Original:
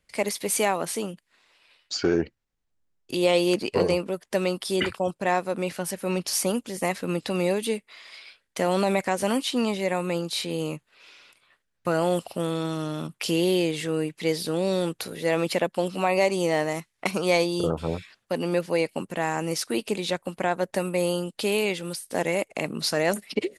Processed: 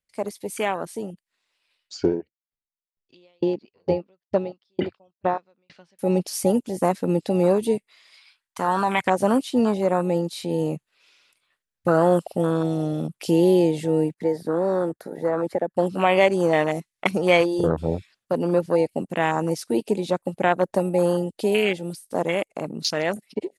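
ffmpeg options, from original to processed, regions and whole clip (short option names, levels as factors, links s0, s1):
-filter_complex "[0:a]asettb=1/sr,asplit=3[s0][s1][s2];[s0]atrim=end=2.064[s3];[s1]atrim=start=2.06:end=5.99,asetpts=PTS-STARTPTS,afade=t=in:d=0.004:c=qsin,afade=t=out:st=3.926:d=0.004:c=qsin,lowpass=f=4700:w=0.5412,lowpass=f=4700:w=1.3066,aeval=exprs='val(0)*pow(10,-39*if(lt(mod(2.2*n/s,1),2*abs(2.2)/1000),1-mod(2.2*n/s,1)/(2*abs(2.2)/1000),(mod(2.2*n/s,1)-2*abs(2.2)/1000)/(1-2*abs(2.2)/1000))/20)':c=same[s4];[s2]atrim=start=5.986[s5];[s3][s4]acrossfade=d=0.004:c1=hsin:c2=qsin[s6];[s6][s5]acrossfade=d=0.004:c1=qsin:c2=hsin,asettb=1/sr,asplit=3[s7][s8][s9];[s7]atrim=end=8.174[s10];[s8]atrim=start=8.17:end=9.04,asetpts=PTS-STARTPTS,afade=t=in:d=0.004:c=qsin,afade=t=out:st=0.866:d=0.004:c=qsin,lowshelf=f=730:t=q:w=3:g=-6.5,aeval=exprs='clip(val(0),-1,0.106)':c=same[s11];[s9]atrim=start=9.036[s12];[s10][s11]acrossfade=d=0.004:c1=hsin:c2=qsin[s13];[s13][s12]acrossfade=d=0.004:c1=qsin:c2=hsin,asettb=1/sr,asplit=3[s14][s15][s16];[s14]atrim=end=14.144[s17];[s15]atrim=start=14.14:end=15.77,asetpts=PTS-STARTPTS,afade=t=in:d=0.004:c=qsin,afade=t=out:st=1.626:d=0.004:c=qsin,agate=range=0.141:threshold=0.00708:ratio=16:release=100:detection=peak,highshelf=f=2200:t=q:w=3:g=-7.5,acrossover=split=250|2500[s18][s19][s20];[s18]acompressor=threshold=0.00708:ratio=4[s21];[s19]acompressor=threshold=0.0631:ratio=4[s22];[s20]acompressor=threshold=0.00631:ratio=4[s23];[s21][s22][s23]amix=inputs=3:normalize=0[s24];[s16]atrim=start=15.766[s25];[s17][s24]acrossfade=d=0.004:c1=hsin:c2=qsin[s26];[s26][s25]acrossfade=d=0.004:c1=qsin:c2=hsin,afwtdn=0.0355,highshelf=f=3600:g=7.5,dynaudnorm=f=320:g=11:m=2.51,volume=0.841"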